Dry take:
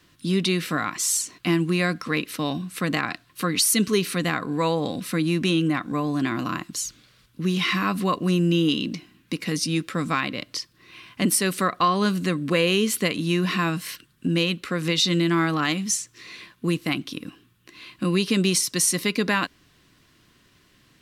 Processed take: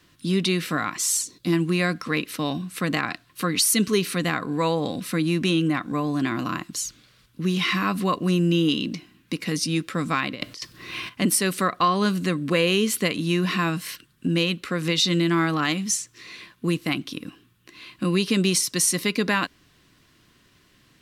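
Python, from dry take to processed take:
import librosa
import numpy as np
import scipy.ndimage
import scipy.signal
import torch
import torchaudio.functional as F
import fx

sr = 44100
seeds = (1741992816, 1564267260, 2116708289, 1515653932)

y = fx.spec_box(x, sr, start_s=1.24, length_s=0.29, low_hz=580.0, high_hz=3300.0, gain_db=-11)
y = fx.over_compress(y, sr, threshold_db=-37.0, ratio=-0.5, at=(10.34, 11.08), fade=0.02)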